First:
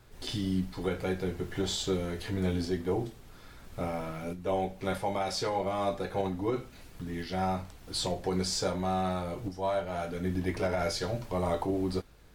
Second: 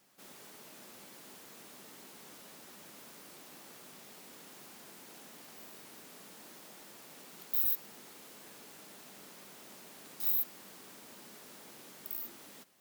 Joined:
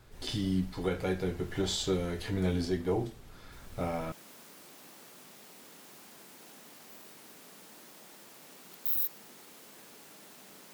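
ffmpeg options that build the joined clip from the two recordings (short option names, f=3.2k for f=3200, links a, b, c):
-filter_complex "[1:a]asplit=2[a][b];[0:a]apad=whole_dur=10.73,atrim=end=10.73,atrim=end=4.122[c];[b]atrim=start=2.798:end=9.41[d];[a]atrim=start=2.2:end=2.8,asetpts=PTS-STARTPTS,volume=-6.5dB,afade=t=in:d=0.004:c=hsin,afade=t=out:st=0.596:d=0.004:c=hsin,adelay=3520[e];[c][d]acrossfade=d=0.004:c1=hsin:c2=hsin[f];[f][e]amix=inputs=2:normalize=0"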